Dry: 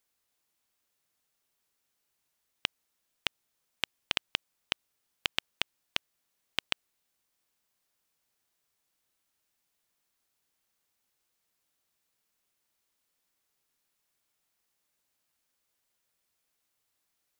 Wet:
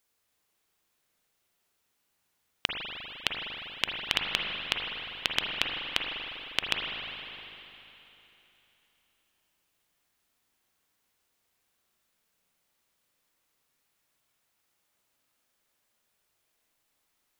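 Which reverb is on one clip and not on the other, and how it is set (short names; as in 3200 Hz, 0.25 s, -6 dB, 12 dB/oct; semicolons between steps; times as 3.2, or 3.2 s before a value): spring tank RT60 3.3 s, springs 39/50 ms, chirp 40 ms, DRR -0.5 dB; gain +2.5 dB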